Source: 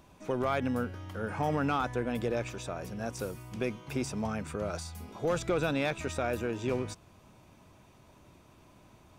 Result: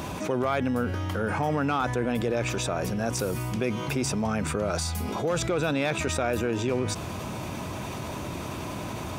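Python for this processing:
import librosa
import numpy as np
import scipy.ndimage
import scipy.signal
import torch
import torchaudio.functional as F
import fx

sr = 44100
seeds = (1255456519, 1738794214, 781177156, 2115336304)

y = scipy.signal.sosfilt(scipy.signal.butter(2, 64.0, 'highpass', fs=sr, output='sos'), x)
y = fx.env_flatten(y, sr, amount_pct=70)
y = y * 10.0 ** (1.5 / 20.0)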